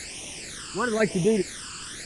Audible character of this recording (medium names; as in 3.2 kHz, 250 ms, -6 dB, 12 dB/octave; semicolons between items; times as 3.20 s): random-step tremolo 4 Hz, depth 100%; a quantiser's noise floor 6-bit, dither triangular; phasing stages 12, 1 Hz, lowest notch 640–1500 Hz; Nellymoser